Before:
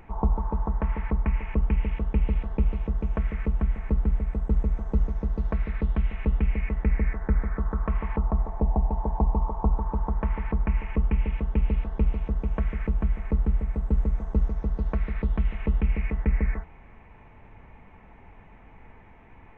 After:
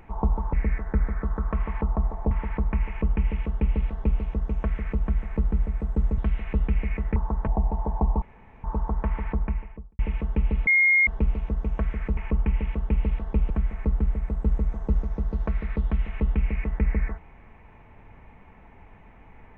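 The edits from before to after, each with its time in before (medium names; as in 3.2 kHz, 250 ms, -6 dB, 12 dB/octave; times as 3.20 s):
0.53–0.84 s: swap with 6.88–8.66 s
1.41–2.74 s: copy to 12.96 s
4.71–5.90 s: delete
9.41–9.83 s: room tone
10.45–11.18 s: studio fade out
11.86 s: add tone 2.14 kHz -15.5 dBFS 0.40 s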